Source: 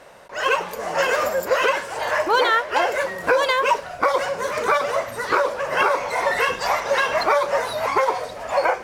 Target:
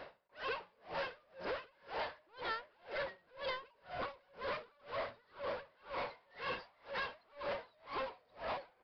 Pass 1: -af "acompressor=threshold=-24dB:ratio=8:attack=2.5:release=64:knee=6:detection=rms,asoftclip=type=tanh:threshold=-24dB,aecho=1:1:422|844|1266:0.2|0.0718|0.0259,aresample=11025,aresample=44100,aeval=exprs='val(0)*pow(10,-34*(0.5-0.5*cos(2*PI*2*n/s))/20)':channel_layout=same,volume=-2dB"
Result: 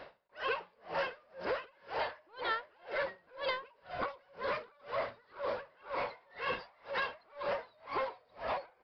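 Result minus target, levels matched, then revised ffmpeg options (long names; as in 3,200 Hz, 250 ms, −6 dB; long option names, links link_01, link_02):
soft clipping: distortion −9 dB
-af "acompressor=threshold=-24dB:ratio=8:attack=2.5:release=64:knee=6:detection=rms,asoftclip=type=tanh:threshold=-33dB,aecho=1:1:422|844|1266:0.2|0.0718|0.0259,aresample=11025,aresample=44100,aeval=exprs='val(0)*pow(10,-34*(0.5-0.5*cos(2*PI*2*n/s))/20)':channel_layout=same,volume=-2dB"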